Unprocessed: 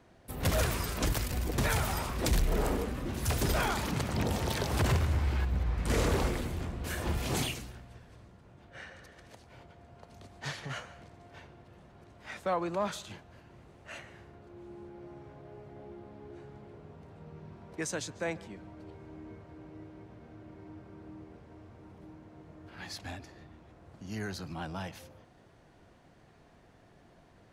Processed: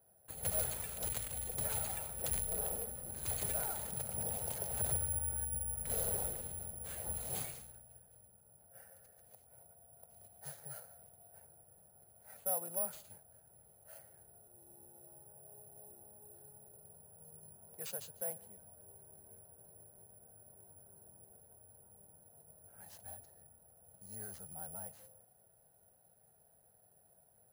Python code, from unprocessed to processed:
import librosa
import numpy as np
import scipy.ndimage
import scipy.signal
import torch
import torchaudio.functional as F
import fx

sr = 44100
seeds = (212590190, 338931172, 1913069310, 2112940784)

y = fx.highpass(x, sr, hz=120.0, slope=6)
y = fx.band_shelf(y, sr, hz=2800.0, db=-15.0, octaves=1.7)
y = fx.fixed_phaser(y, sr, hz=1100.0, stages=6)
y = (np.kron(y[::4], np.eye(4)[0]) * 4)[:len(y)]
y = F.gain(torch.from_numpy(y), -9.0).numpy()